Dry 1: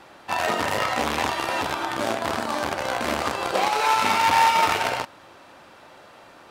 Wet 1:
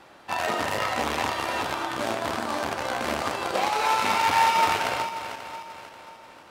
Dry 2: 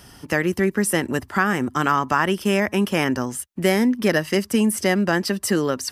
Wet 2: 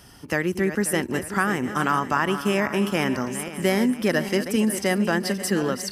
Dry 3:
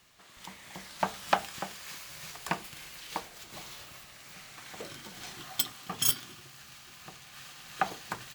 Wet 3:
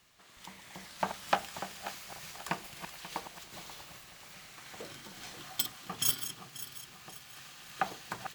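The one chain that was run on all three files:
feedback delay that plays each chunk backwards 268 ms, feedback 62%, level −10.5 dB
level −3 dB

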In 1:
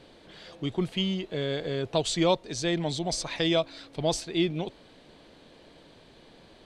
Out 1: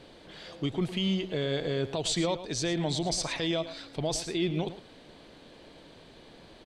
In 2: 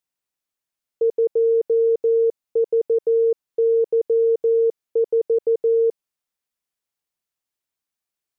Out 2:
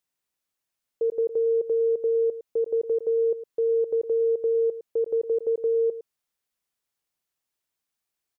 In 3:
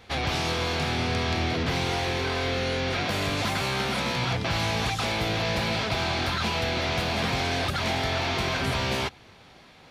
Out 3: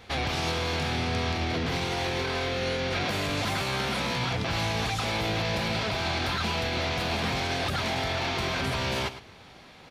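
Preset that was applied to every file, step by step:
brickwall limiter −21 dBFS
on a send: single-tap delay 109 ms −13 dB
on the sum: level +1.5 dB

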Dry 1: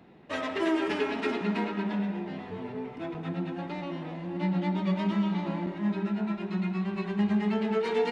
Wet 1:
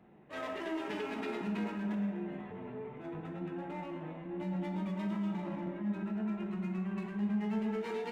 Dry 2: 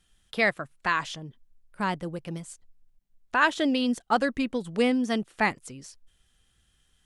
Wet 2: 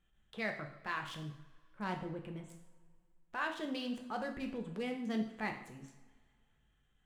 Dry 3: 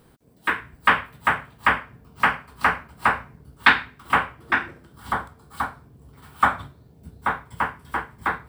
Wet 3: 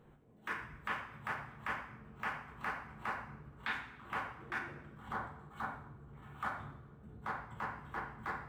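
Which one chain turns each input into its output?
adaptive Wiener filter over 9 samples
downward compressor 6 to 1, threshold −27 dBFS
transient designer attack −8 dB, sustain +1 dB
coupled-rooms reverb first 0.63 s, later 2.3 s, from −20 dB, DRR 3 dB
level −6.5 dB

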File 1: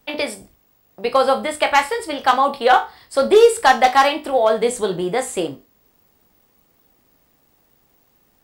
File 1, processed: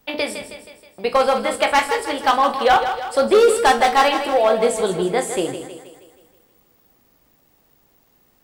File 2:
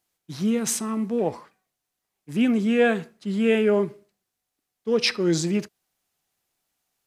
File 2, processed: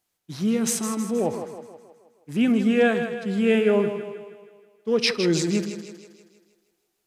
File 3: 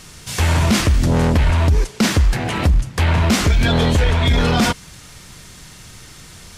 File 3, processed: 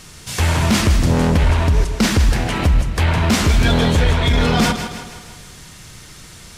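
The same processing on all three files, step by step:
gain into a clipping stage and back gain 9 dB
echo with a time of its own for lows and highs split 320 Hz, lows 115 ms, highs 159 ms, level −9 dB

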